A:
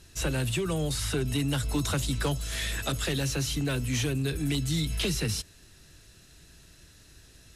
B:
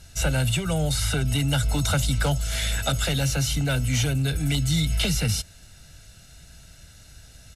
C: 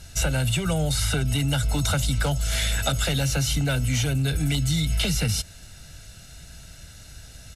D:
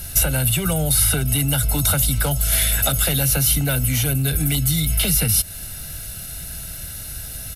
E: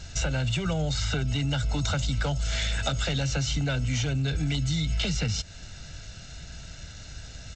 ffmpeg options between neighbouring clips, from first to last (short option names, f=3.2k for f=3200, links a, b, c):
-af "aecho=1:1:1.4:0.67,volume=3.5dB"
-af "acompressor=threshold=-24dB:ratio=6,volume=4dB"
-af "acompressor=threshold=-31dB:ratio=2,aexciter=amount=8.6:drive=4.6:freq=9.8k,volume=8.5dB"
-af "volume=-6dB" -ar 16000 -c:a g722